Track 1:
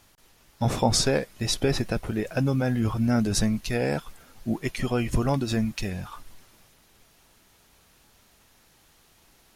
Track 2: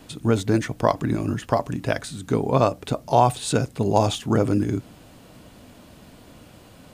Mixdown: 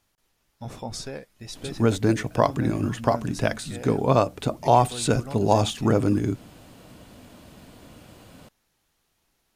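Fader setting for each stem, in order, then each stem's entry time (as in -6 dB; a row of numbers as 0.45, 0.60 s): -12.5, -0.5 dB; 0.00, 1.55 s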